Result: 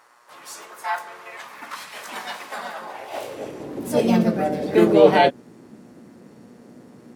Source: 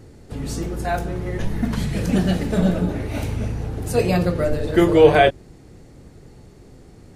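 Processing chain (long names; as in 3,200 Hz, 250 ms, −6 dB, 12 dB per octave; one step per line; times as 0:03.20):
pitch-shifted copies added +4 semitones −1 dB
hum with harmonics 120 Hz, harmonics 17, −49 dBFS −5 dB per octave
high-pass filter sweep 1,100 Hz → 220 Hz, 0:02.78–0:03.92
level −5.5 dB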